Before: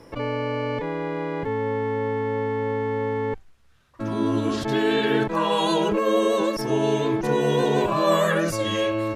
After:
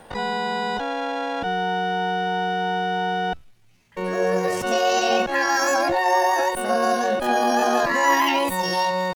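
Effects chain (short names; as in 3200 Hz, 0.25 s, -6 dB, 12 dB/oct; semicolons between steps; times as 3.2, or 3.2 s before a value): thin delay 0.11 s, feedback 72%, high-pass 4500 Hz, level -18.5 dB; pitch shift +9 st; gain +1.5 dB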